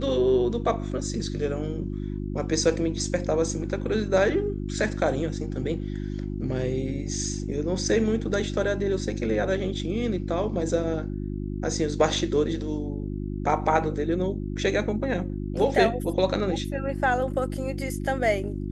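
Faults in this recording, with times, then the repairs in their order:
hum 50 Hz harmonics 7 -31 dBFS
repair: de-hum 50 Hz, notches 7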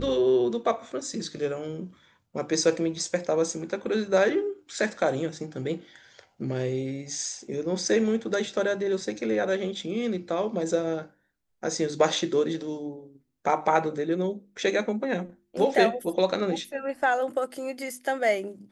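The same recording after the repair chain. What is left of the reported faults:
nothing left

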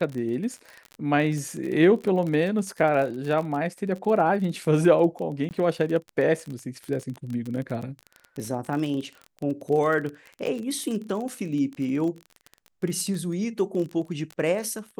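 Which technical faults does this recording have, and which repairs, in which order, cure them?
crackle 29 per s -30 dBFS
5.49–5.51 s: dropout 19 ms
10.46–10.47 s: dropout 7 ms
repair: de-click; interpolate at 5.49 s, 19 ms; interpolate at 10.46 s, 7 ms

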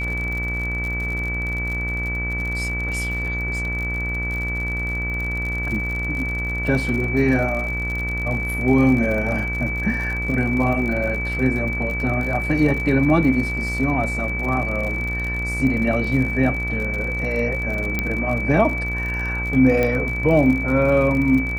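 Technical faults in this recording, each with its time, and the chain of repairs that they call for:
buzz 60 Hz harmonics 39 -27 dBFS
crackle 54 per s -27 dBFS
whine 2.3 kHz -25 dBFS
17.99 s: pop -8 dBFS
19.83 s: pop -9 dBFS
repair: de-click; de-hum 60 Hz, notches 39; band-stop 2.3 kHz, Q 30

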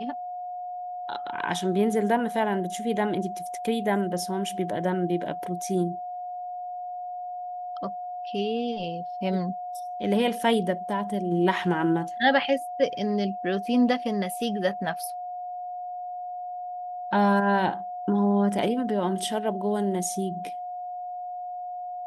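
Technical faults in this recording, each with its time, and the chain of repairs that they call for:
whine 720 Hz -32 dBFS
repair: band-stop 720 Hz, Q 30

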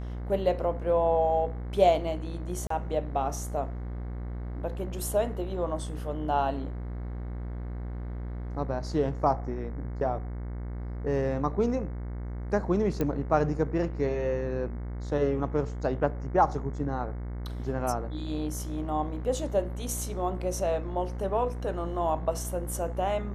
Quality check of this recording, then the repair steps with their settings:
buzz 60 Hz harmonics 37 -35 dBFS
2.67–2.70 s: dropout 34 ms
13.01 s: pop -16 dBFS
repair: de-click; de-hum 60 Hz, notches 37; interpolate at 2.67 s, 34 ms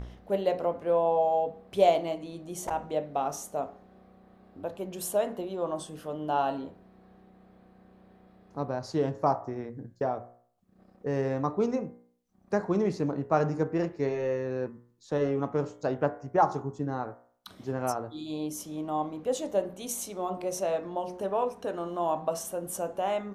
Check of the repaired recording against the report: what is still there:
nothing left

